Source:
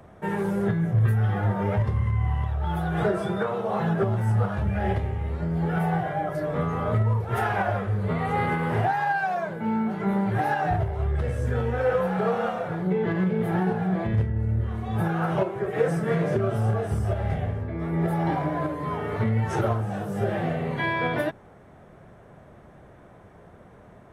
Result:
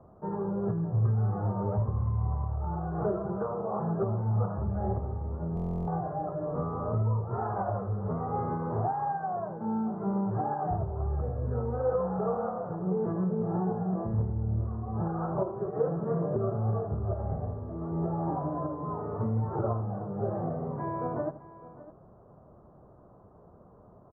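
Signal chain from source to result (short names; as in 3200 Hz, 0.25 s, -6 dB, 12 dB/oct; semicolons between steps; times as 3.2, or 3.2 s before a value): elliptic low-pass 1200 Hz, stop band 70 dB; on a send: tapped delay 82/608 ms -16/-17 dB; on the sum: stuck buffer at 5.55, samples 1024, times 13; gain -5 dB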